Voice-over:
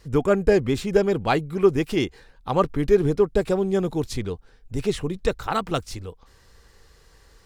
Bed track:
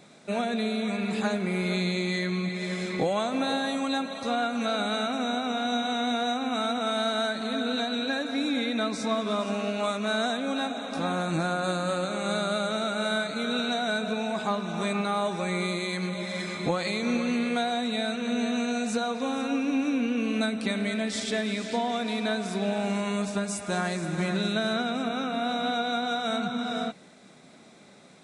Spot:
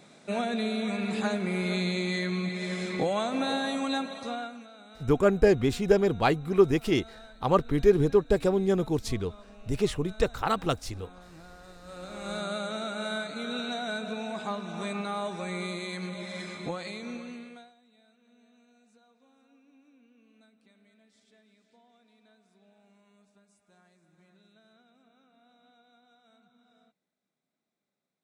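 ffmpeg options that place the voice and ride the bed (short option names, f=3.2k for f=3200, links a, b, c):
-filter_complex "[0:a]adelay=4950,volume=-2.5dB[a];[1:a]volume=16dB,afade=t=out:st=3.97:d=0.7:silence=0.0841395,afade=t=in:st=11.81:d=0.63:silence=0.133352,afade=t=out:st=16.41:d=1.33:silence=0.0334965[b];[a][b]amix=inputs=2:normalize=0"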